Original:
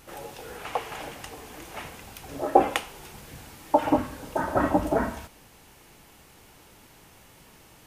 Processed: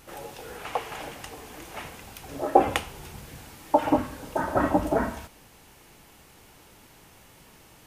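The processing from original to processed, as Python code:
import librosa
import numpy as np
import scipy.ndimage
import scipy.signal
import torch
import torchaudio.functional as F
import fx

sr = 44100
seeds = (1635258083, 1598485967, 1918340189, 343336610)

y = fx.peak_eq(x, sr, hz=84.0, db=fx.line((2.66, 15.0), (3.28, 5.5)), octaves=2.1, at=(2.66, 3.28), fade=0.02)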